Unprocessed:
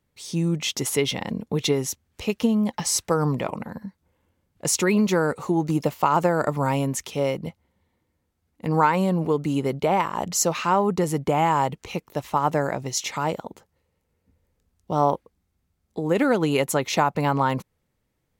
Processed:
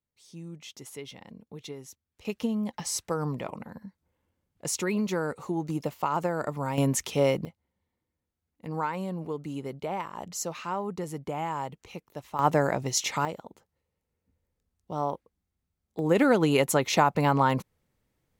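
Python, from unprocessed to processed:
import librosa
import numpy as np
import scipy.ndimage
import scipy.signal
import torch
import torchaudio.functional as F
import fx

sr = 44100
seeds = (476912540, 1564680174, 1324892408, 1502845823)

y = fx.gain(x, sr, db=fx.steps((0.0, -18.5), (2.25, -8.0), (6.78, 0.5), (7.45, -11.5), (12.39, -0.5), (13.25, -9.5), (15.99, -1.0)))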